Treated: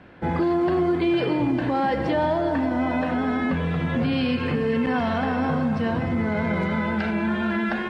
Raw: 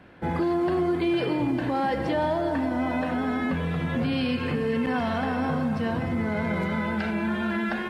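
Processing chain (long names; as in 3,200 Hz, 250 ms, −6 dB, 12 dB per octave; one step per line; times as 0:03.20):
high-frequency loss of the air 58 metres
level +3 dB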